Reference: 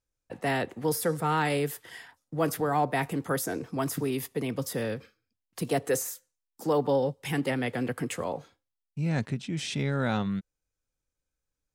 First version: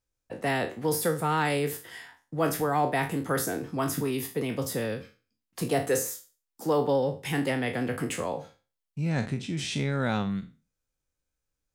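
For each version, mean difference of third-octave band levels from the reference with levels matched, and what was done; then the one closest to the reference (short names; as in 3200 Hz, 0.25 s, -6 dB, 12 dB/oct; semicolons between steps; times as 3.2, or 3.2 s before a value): 2.5 dB: spectral trails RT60 0.33 s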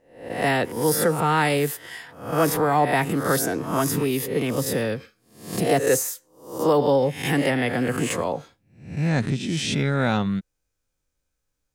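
4.0 dB: spectral swells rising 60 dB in 0.52 s; gain +5.5 dB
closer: first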